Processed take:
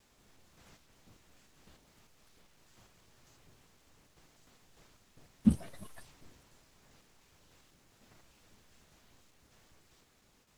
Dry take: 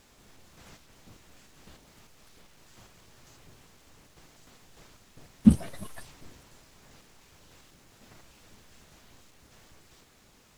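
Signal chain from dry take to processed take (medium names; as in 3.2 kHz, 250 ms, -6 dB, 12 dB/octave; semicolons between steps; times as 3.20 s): gate with hold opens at -50 dBFS; trim -8 dB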